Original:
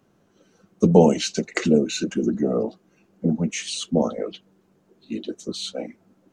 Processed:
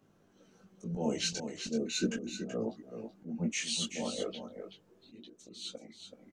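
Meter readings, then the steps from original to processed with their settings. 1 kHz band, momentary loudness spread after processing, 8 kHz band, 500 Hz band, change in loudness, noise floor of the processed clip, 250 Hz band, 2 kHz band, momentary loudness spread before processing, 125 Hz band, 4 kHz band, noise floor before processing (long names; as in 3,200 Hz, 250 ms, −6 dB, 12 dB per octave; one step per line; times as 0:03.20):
−17.0 dB, 18 LU, −6.0 dB, −16.5 dB, −13.5 dB, −67 dBFS, −14.5 dB, −9.0 dB, 16 LU, −16.5 dB, −6.0 dB, −63 dBFS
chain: volume swells 372 ms
multi-voice chorus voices 2, 0.37 Hz, delay 19 ms, depth 2.6 ms
single-tap delay 379 ms −8.5 dB
level −1.5 dB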